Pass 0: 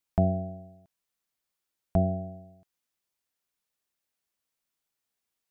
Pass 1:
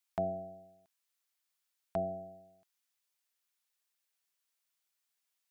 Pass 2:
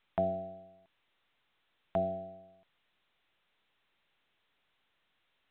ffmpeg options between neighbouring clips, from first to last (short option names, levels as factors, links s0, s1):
-af "highpass=f=1300:p=1,volume=1.19"
-af "volume=1.41" -ar 8000 -c:a pcm_mulaw